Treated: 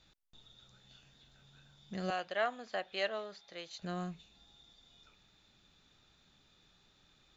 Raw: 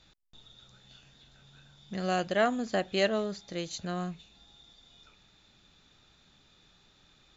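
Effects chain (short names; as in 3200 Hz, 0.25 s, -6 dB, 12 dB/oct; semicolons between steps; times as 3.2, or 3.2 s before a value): 2.1–3.82 three-band isolator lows -17 dB, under 510 Hz, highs -18 dB, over 5200 Hz; gain -5 dB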